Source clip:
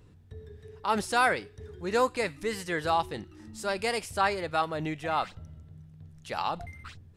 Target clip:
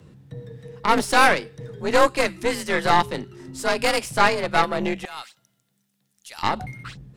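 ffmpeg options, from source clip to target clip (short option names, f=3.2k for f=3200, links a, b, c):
-filter_complex "[0:a]afreqshift=44,asettb=1/sr,asplit=3[a][b][c];[a]atrim=end=5.054[d];[b]atrim=start=5.05:end=6.43,asetpts=PTS-STARTPTS,afade=t=in:d=0.004:c=qsin,afade=t=out:st=1.376:d=0.004:c=qsin,aderivative[e];[c]atrim=start=6.426[f];[d][e]acrossfade=d=0.004:c1=hsin:c2=qsin[g];[g][f]acrossfade=d=0.004:c1=qsin:c2=hsin,aeval=exprs='0.266*(cos(1*acos(clip(val(0)/0.266,-1,1)))-cos(1*PI/2))+0.0422*(cos(4*acos(clip(val(0)/0.266,-1,1)))-cos(4*PI/2))+0.0133*(cos(8*acos(clip(val(0)/0.266,-1,1)))-cos(8*PI/2))':c=same,volume=7.5dB"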